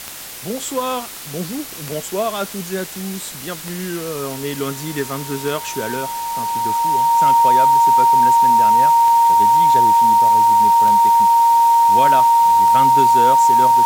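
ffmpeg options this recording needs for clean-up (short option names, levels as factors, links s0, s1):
-af "adeclick=t=4,bandreject=f=930:w=30,afftdn=nr=30:nf=-31"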